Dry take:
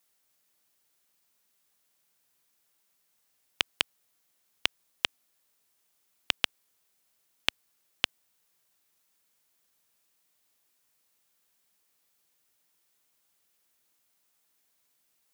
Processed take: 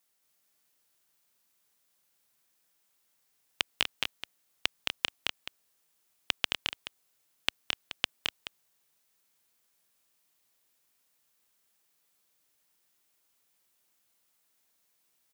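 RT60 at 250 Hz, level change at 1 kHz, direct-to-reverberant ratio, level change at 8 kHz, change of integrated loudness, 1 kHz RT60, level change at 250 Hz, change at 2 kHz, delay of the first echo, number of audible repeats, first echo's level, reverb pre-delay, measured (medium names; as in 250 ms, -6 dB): no reverb, 0.0 dB, no reverb, 0.0 dB, -2.0 dB, no reverb, -0.5 dB, 0.0 dB, 218 ms, 2, -3.5 dB, no reverb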